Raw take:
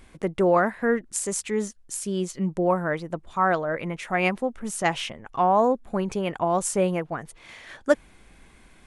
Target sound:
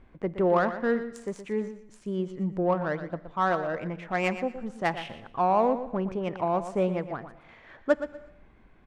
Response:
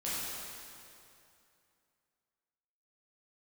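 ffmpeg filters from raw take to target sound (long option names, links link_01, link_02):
-filter_complex "[0:a]adynamicsmooth=sensitivity=1:basefreq=1900,aecho=1:1:120|240|360:0.266|0.0559|0.0117,asplit=2[link_01][link_02];[1:a]atrim=start_sample=2205,afade=type=out:start_time=0.43:duration=0.01,atrim=end_sample=19404[link_03];[link_02][link_03]afir=irnorm=-1:irlink=0,volume=-23.5dB[link_04];[link_01][link_04]amix=inputs=2:normalize=0,volume=-3.5dB"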